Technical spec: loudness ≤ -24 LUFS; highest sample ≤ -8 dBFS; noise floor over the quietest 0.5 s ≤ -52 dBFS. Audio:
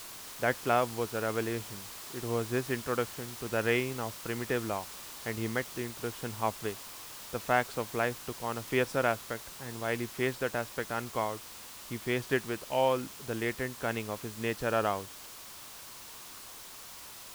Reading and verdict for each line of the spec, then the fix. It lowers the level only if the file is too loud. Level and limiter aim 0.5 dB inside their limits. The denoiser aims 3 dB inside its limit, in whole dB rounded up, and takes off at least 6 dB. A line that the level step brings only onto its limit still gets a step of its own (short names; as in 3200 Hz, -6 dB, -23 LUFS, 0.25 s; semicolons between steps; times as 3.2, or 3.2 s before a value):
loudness -33.0 LUFS: OK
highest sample -12.5 dBFS: OK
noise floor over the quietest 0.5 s -47 dBFS: fail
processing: denoiser 8 dB, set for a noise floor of -47 dBFS